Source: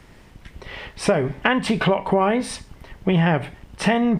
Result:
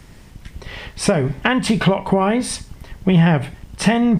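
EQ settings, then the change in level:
bass and treble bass +10 dB, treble +7 dB
low-shelf EQ 240 Hz −5 dB
+1.0 dB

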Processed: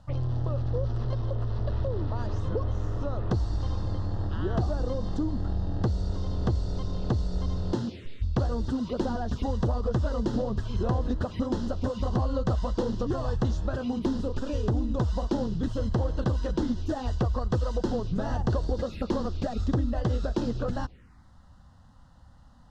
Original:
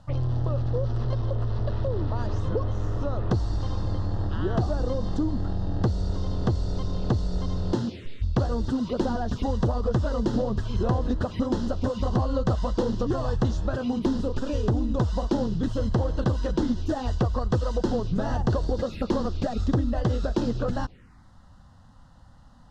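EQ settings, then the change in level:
parametric band 66 Hz +6.5 dB 0.29 octaves
−3.0 dB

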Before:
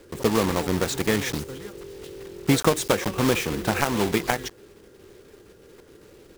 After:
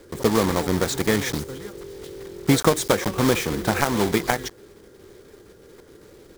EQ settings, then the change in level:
parametric band 2,700 Hz −6 dB 0.24 octaves
+2.0 dB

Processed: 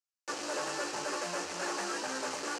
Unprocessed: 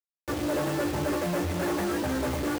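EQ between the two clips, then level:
loudspeaker in its box 290–7,200 Hz, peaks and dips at 310 Hz −7 dB, 610 Hz −4 dB, 2,100 Hz −6 dB, 3,500 Hz −9 dB
spectral tilt +3 dB per octave
−2.0 dB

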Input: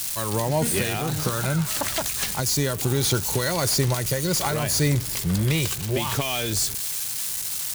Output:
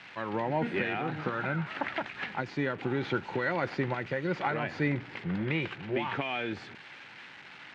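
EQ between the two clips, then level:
loudspeaker in its box 270–2,300 Hz, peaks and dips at 430 Hz −6 dB, 620 Hz −7 dB, 1,100 Hz −7 dB
0.0 dB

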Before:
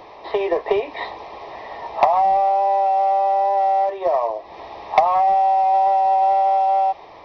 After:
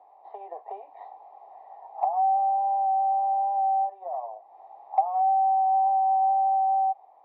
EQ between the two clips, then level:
resonant band-pass 770 Hz, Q 9.5
−5.5 dB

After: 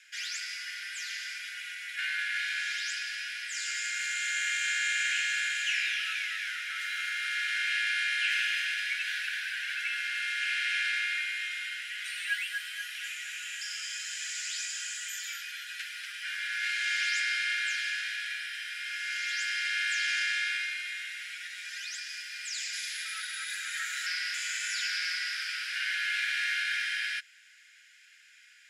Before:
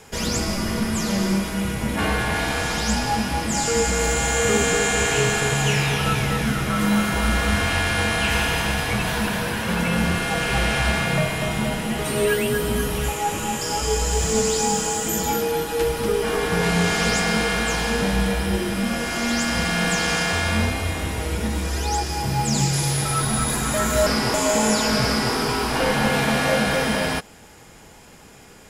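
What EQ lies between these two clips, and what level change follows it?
Chebyshev high-pass filter 1,500 Hz, order 6
resonant band-pass 2,100 Hz, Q 0.82
−3.0 dB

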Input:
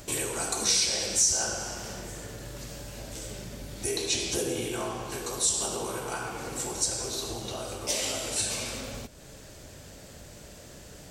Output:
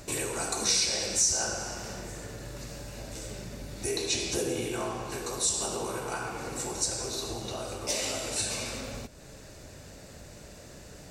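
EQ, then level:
high-shelf EQ 9,900 Hz −6.5 dB
notch filter 3,200 Hz, Q 9.2
0.0 dB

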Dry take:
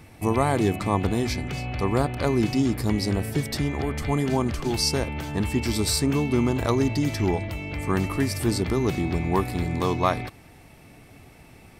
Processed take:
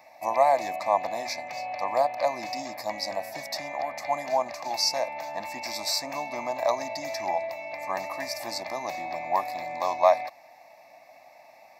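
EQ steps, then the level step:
dynamic equaliser 9,000 Hz, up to +5 dB, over −46 dBFS, Q 0.99
high-pass with resonance 610 Hz, resonance Q 4.9
phaser with its sweep stopped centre 2,100 Hz, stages 8
−1.5 dB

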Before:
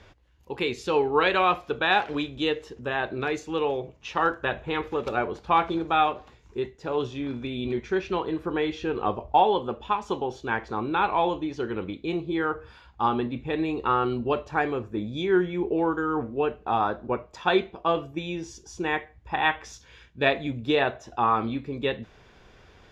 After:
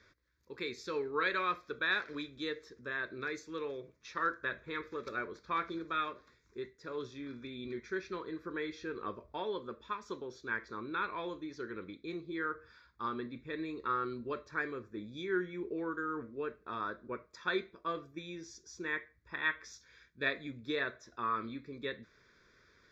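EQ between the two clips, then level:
low-shelf EQ 90 Hz −6 dB
low-shelf EQ 290 Hz −10 dB
phaser with its sweep stopped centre 2,900 Hz, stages 6
−5.5 dB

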